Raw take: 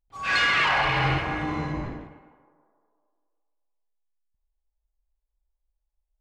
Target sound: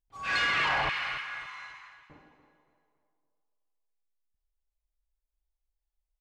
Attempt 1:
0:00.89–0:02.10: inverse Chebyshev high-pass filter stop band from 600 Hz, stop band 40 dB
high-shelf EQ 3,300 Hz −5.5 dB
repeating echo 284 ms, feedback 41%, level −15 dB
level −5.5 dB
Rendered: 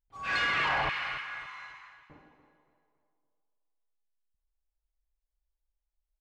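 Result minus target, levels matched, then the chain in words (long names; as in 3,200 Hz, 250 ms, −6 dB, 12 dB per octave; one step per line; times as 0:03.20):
8,000 Hz band −3.0 dB
0:00.89–0:02.10: inverse Chebyshev high-pass filter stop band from 600 Hz, stop band 40 dB
repeating echo 284 ms, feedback 41%, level −15 dB
level −5.5 dB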